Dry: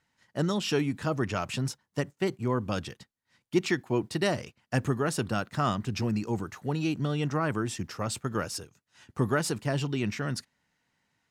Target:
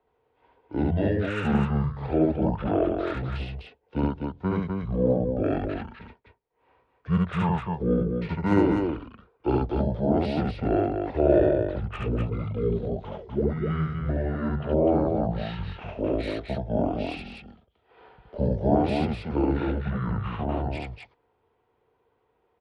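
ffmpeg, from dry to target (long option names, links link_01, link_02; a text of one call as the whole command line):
ffmpeg -i in.wav -filter_complex "[0:a]lowpass=5900,equalizer=frequency=850:width=1.1:gain=14,acrossover=split=200|480|3400[link_01][link_02][link_03][link_04];[link_04]volume=33.5dB,asoftclip=hard,volume=-33.5dB[link_05];[link_01][link_02][link_03][link_05]amix=inputs=4:normalize=0,aecho=1:1:34.99|125.4:0.891|0.631,asetrate=22050,aresample=44100,volume=-3.5dB" out.wav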